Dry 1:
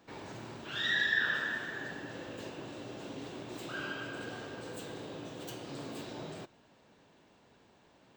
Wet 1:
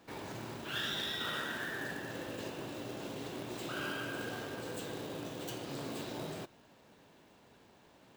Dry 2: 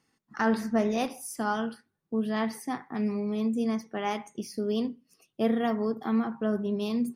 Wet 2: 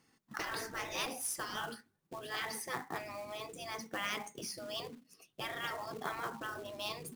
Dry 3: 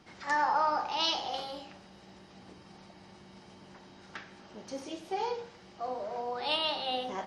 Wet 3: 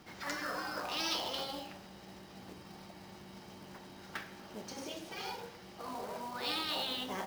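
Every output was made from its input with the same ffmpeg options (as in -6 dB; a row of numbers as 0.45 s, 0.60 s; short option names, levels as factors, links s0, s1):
-af "afftfilt=real='re*lt(hypot(re,im),0.0794)':imag='im*lt(hypot(re,im),0.0794)':win_size=1024:overlap=0.75,acrusher=bits=3:mode=log:mix=0:aa=0.000001,volume=1.19"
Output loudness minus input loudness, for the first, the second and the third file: -3.0 LU, -10.5 LU, -6.5 LU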